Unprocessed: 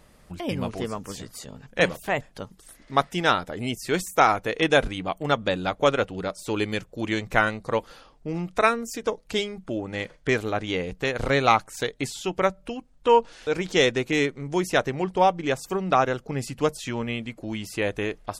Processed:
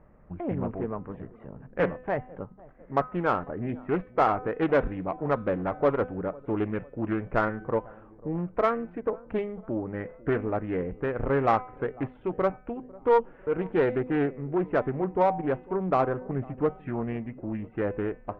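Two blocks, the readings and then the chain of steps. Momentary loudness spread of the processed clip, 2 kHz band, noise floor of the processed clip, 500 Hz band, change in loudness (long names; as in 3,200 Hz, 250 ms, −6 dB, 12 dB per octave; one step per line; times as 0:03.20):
10 LU, −10.0 dB, −52 dBFS, −2.0 dB, −3.5 dB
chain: adaptive Wiener filter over 9 samples
Bessel low-pass filter 1,300 Hz, order 8
hum removal 253 Hz, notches 28
in parallel at −3 dB: soft clipping −19.5 dBFS, distortion −11 dB
on the sum: delay with a low-pass on its return 499 ms, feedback 48%, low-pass 920 Hz, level −21.5 dB
highs frequency-modulated by the lows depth 0.33 ms
level −5 dB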